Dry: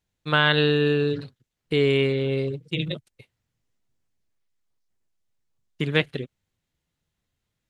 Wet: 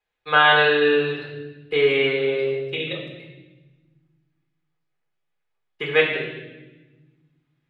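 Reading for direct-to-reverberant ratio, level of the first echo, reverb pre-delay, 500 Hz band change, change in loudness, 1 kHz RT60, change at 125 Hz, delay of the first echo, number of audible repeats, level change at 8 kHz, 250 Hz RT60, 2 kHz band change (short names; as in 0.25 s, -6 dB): -4.0 dB, none, 4 ms, +3.5 dB, +3.5 dB, 0.90 s, -9.0 dB, none, none, n/a, 2.1 s, +6.5 dB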